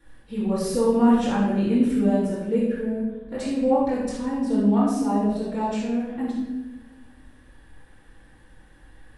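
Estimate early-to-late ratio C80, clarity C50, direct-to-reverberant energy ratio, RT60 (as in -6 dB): 3.0 dB, -0.5 dB, -10.5 dB, 1.2 s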